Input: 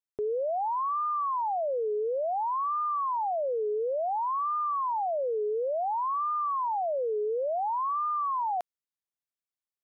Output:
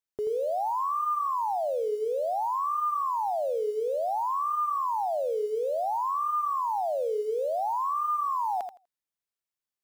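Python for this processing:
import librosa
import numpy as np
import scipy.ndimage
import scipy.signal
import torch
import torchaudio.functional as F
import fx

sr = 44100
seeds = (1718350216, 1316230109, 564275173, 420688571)

p1 = fx.quant_float(x, sr, bits=2)
p2 = x + (p1 * librosa.db_to_amplitude(-6.0))
p3 = fx.echo_feedback(p2, sr, ms=82, feedback_pct=16, wet_db=-7.5)
y = p3 * librosa.db_to_amplitude(-3.5)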